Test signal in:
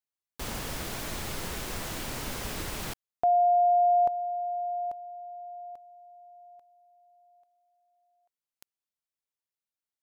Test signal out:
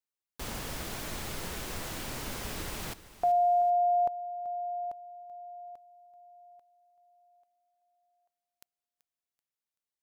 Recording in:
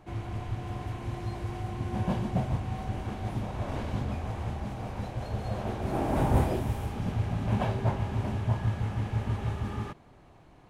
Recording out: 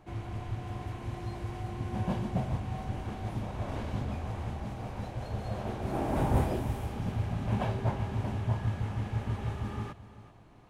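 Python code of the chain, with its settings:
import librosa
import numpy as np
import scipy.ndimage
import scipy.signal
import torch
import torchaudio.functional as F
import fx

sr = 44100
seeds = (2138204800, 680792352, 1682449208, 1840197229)

y = fx.echo_feedback(x, sr, ms=383, feedback_pct=30, wet_db=-16)
y = y * librosa.db_to_amplitude(-2.5)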